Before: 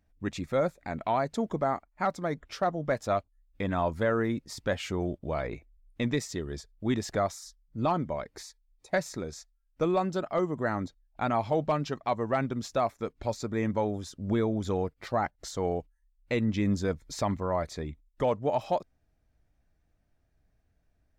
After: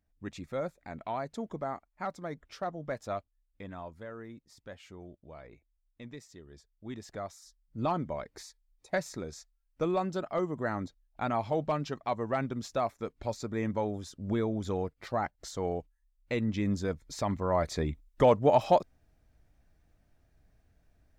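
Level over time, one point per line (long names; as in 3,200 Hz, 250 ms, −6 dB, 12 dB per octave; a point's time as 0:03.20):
0:03.14 −7.5 dB
0:04.02 −17 dB
0:06.34 −17 dB
0:07.39 −10 dB
0:07.79 −3 dB
0:17.21 −3 dB
0:17.82 +5 dB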